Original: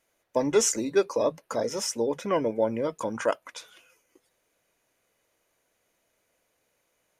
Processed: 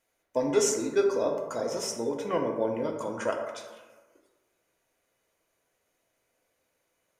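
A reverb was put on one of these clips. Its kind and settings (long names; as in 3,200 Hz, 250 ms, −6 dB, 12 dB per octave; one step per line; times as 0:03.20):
dense smooth reverb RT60 1.3 s, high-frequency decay 0.4×, DRR 2 dB
level −4.5 dB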